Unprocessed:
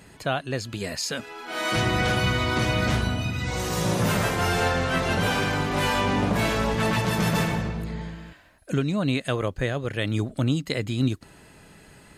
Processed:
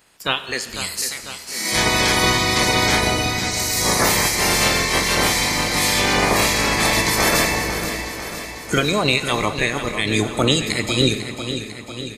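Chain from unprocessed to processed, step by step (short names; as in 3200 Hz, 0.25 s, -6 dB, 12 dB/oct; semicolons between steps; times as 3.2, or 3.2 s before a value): spectral limiter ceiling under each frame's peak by 21 dB; spectral noise reduction 14 dB; feedback echo 0.498 s, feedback 60%, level -10 dB; Schroeder reverb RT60 1.9 s, DRR 11.5 dB; gain +6.5 dB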